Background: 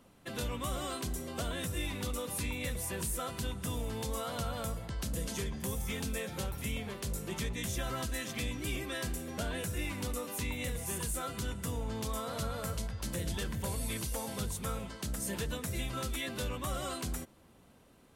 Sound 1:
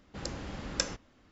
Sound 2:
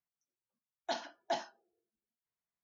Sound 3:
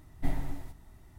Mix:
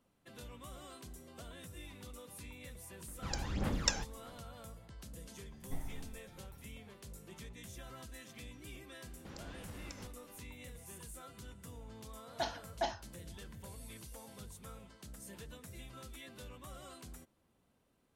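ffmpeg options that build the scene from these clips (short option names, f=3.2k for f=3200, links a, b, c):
-filter_complex "[1:a]asplit=2[a][b];[0:a]volume=-14dB[c];[a]aphaser=in_gain=1:out_gain=1:delay=1.3:decay=0.66:speed=1.7:type=sinusoidal[d];[b]acompressor=threshold=-44dB:ratio=6:attack=3.2:release=140:knee=1:detection=peak[e];[d]atrim=end=1.31,asetpts=PTS-STARTPTS,volume=-2.5dB,afade=t=in:d=0.004:c=hsin,afade=t=out:st=1.306:d=0.004:c=hsin,adelay=3080[f];[3:a]atrim=end=1.18,asetpts=PTS-STARTPTS,volume=-12dB,afade=t=in:d=0.004:c=hsin,afade=t=out:st=1.176:d=0.004:c=hsin,adelay=5480[g];[e]atrim=end=1.31,asetpts=PTS-STARTPTS,volume=-3dB,afade=t=in:d=0.004:c=hsin,afade=t=out:st=1.306:d=0.004:c=hsin,adelay=9110[h];[2:a]atrim=end=2.63,asetpts=PTS-STARTPTS,volume=-0.5dB,afade=t=in:d=0.004:c=hsin,afade=t=out:st=2.626:d=0.004:c=hsin,adelay=11510[i];[c][f][g][h][i]amix=inputs=5:normalize=0"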